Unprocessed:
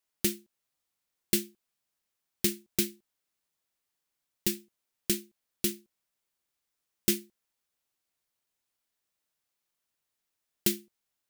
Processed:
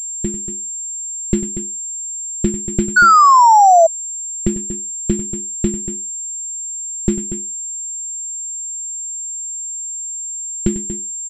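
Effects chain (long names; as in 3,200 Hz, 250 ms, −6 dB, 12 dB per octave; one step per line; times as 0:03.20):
spectral tilt −4.5 dB per octave
automatic gain control gain up to 14 dB
loudspeakers that aren't time-aligned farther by 33 metres −12 dB, 81 metres −11 dB
sound drawn into the spectrogram fall, 0:02.96–0:03.87, 640–1,500 Hz −7 dBFS
switching amplifier with a slow clock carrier 7,400 Hz
level −1 dB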